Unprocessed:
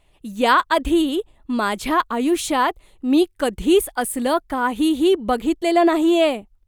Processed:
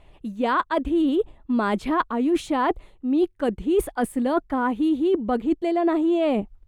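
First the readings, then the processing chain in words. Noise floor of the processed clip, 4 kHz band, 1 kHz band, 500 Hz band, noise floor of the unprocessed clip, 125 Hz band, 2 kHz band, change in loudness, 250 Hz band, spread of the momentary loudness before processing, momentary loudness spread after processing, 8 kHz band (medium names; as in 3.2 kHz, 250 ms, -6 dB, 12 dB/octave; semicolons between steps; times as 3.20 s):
-56 dBFS, -12.0 dB, -5.0 dB, -4.0 dB, -58 dBFS, no reading, -7.0 dB, -4.0 dB, -2.5 dB, 7 LU, 5 LU, -13.0 dB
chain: low-pass 1.7 kHz 6 dB/octave; dynamic bell 250 Hz, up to +5 dB, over -30 dBFS, Q 0.82; reverse; compression 6:1, threshold -29 dBFS, peak gain reduction 18.5 dB; reverse; trim +8.5 dB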